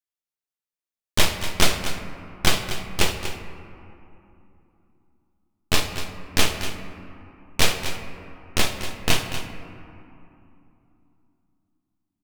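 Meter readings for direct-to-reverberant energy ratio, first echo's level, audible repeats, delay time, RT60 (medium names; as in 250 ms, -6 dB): 5.5 dB, -11.5 dB, 1, 240 ms, 2.9 s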